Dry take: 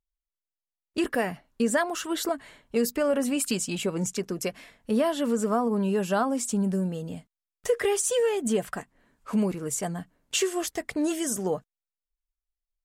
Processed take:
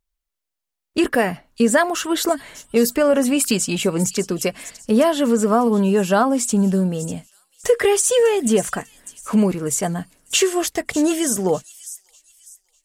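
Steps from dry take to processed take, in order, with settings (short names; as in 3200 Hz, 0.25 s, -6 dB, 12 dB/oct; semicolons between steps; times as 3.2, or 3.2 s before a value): thin delay 0.598 s, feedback 32%, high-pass 5100 Hz, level -10.5 dB; gain +8.5 dB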